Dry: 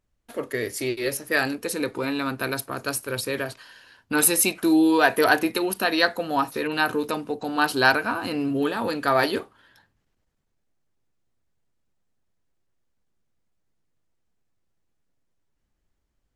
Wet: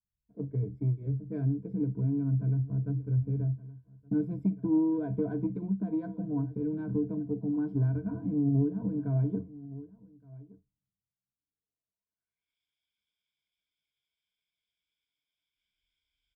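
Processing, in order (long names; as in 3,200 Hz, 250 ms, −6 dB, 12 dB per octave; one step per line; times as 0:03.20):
in parallel at −0.5 dB: brickwall limiter −12.5 dBFS, peak gain reduction 9.5 dB
on the sum: low-pass filter sweep 160 Hz → 3,000 Hz, 0:11.17–0:12.54
harmonic generator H 3 −21 dB, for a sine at −13.5 dBFS
EQ curve with evenly spaced ripples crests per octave 1.7, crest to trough 17 dB
single-tap delay 1,168 ms −18.5 dB
downward compressor 2.5 to 1, threshold −29 dBFS, peak gain reduction 9.5 dB
multiband upward and downward expander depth 70%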